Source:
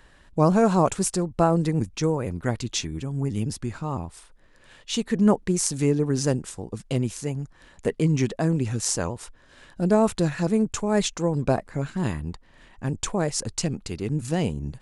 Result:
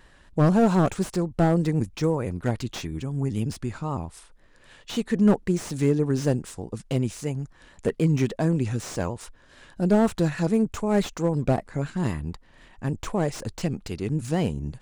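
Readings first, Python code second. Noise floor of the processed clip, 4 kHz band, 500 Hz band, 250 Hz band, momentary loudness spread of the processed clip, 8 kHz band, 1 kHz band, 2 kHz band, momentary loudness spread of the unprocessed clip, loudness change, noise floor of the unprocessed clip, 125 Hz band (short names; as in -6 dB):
-55 dBFS, -5.5 dB, -1.0 dB, +0.5 dB, 11 LU, -10.0 dB, -2.5 dB, -0.5 dB, 11 LU, -0.5 dB, -55 dBFS, +0.5 dB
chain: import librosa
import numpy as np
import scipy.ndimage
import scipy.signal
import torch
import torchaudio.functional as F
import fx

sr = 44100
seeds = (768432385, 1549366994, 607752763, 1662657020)

y = fx.vibrato(x, sr, rate_hz=3.9, depth_cents=37.0)
y = fx.slew_limit(y, sr, full_power_hz=85.0)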